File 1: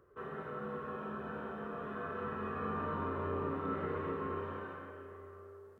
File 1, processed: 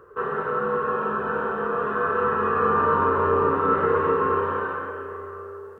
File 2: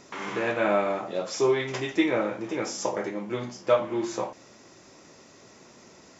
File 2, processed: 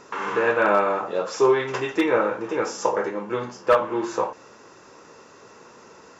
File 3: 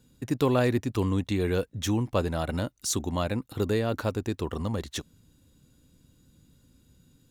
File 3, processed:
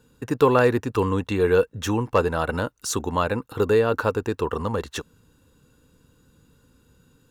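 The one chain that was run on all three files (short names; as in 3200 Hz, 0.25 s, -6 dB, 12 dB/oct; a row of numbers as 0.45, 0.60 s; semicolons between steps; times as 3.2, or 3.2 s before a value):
wavefolder -13.5 dBFS; band shelf 1200 Hz +9.5 dB 1.2 oct; small resonant body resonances 460/2700 Hz, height 11 dB, ringing for 30 ms; match loudness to -23 LUFS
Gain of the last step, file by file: +9.0, -0.5, +1.0 dB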